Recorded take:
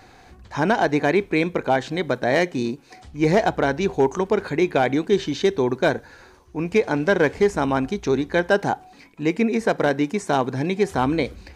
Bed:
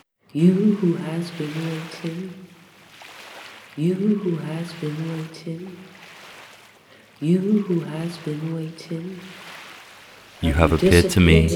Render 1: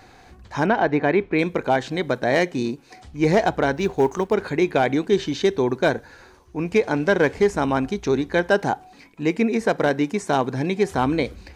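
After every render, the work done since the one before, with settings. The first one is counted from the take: 0.66–1.39 LPF 2800 Hz; 3.76–4.34 G.711 law mismatch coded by A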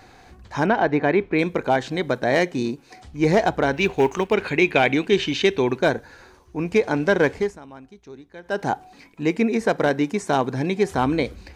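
3.73–5.8 bell 2600 Hz +12.5 dB 0.72 oct; 7.29–8.72 dip -20.5 dB, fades 0.30 s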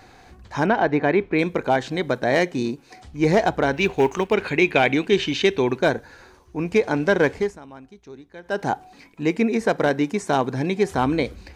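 nothing audible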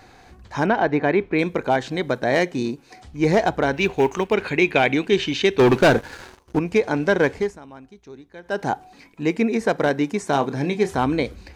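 5.59–6.59 sample leveller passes 3; 10.32–10.96 doubler 28 ms -10 dB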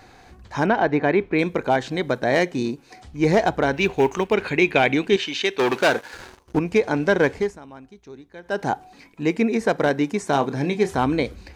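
5.16–6.14 HPF 670 Hz 6 dB/oct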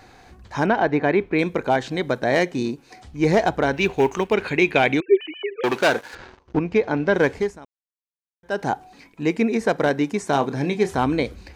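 5–5.64 sine-wave speech; 6.15–7.14 air absorption 150 m; 7.65–8.43 mute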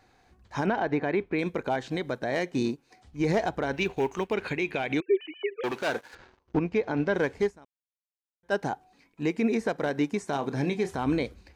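limiter -15.5 dBFS, peak gain reduction 11 dB; upward expander 1.5:1, over -46 dBFS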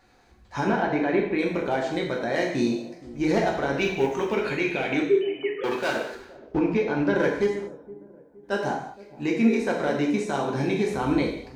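dark delay 0.468 s, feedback 40%, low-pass 670 Hz, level -18 dB; non-linear reverb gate 0.25 s falling, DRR -1.5 dB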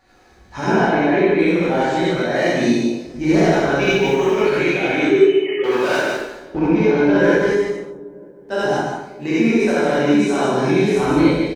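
echo 0.15 s -5 dB; non-linear reverb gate 0.11 s rising, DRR -6 dB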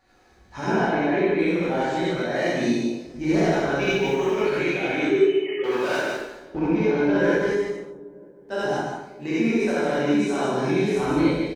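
gain -6 dB

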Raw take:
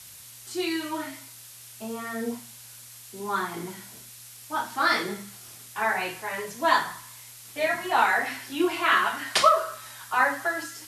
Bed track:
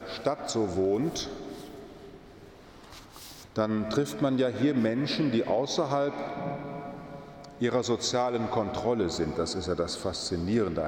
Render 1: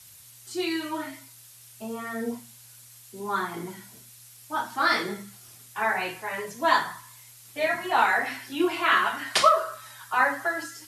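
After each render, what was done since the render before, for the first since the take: denoiser 6 dB, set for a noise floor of -47 dBFS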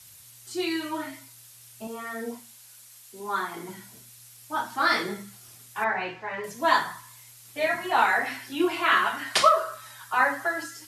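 1.87–3.69 HPF 360 Hz 6 dB/oct; 5.84–6.44 air absorption 190 m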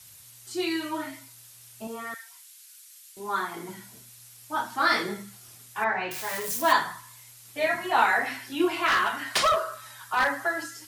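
2.14–3.17 Bessel high-pass 1800 Hz, order 8; 6.11–6.73 switching spikes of -24.5 dBFS; 8.86–10.35 hard clip -18.5 dBFS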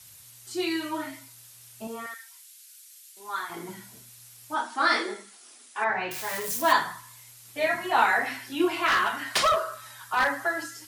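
2.06–3.5 HPF 1400 Hz 6 dB/oct; 4.54–5.9 brick-wall FIR band-pass 220–11000 Hz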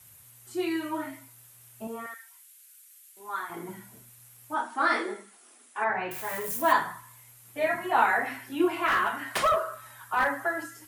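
bell 4800 Hz -11.5 dB 1.5 oct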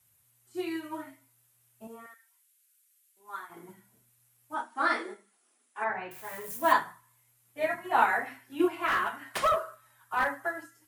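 upward expander 1.5:1, over -47 dBFS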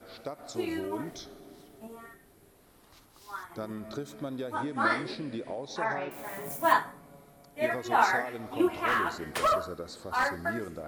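add bed track -10.5 dB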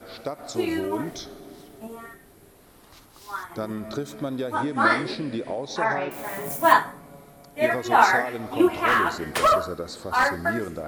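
gain +7 dB

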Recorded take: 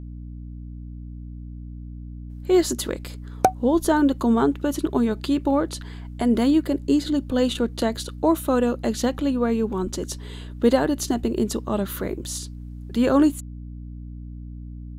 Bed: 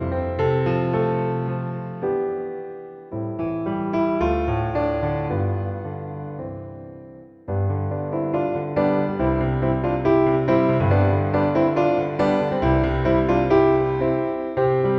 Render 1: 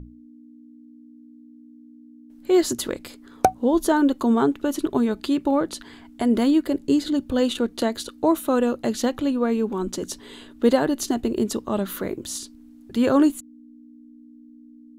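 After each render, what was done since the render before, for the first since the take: notches 60/120/180 Hz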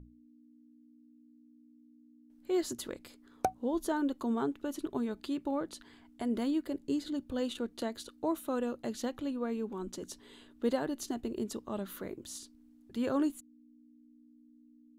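gain -13 dB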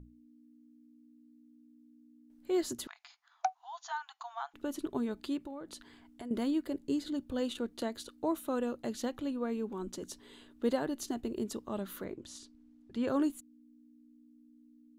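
2.87–4.54 brick-wall FIR band-pass 670–7200 Hz; 5.37–6.31 compressor 4:1, threshold -41 dBFS; 12.04–13.08 air absorption 62 m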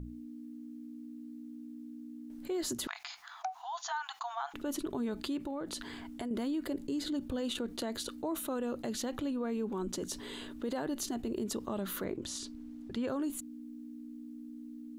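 limiter -28.5 dBFS, peak gain reduction 10 dB; fast leveller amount 50%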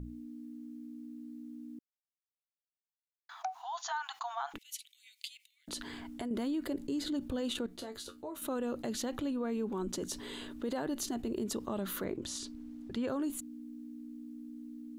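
1.79–3.29 mute; 4.58–5.68 Chebyshev high-pass 2100 Hz, order 6; 7.66–8.42 resonator 88 Hz, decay 0.17 s, mix 90%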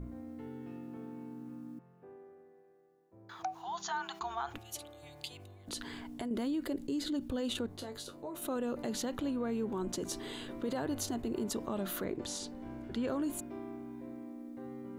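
add bed -30.5 dB

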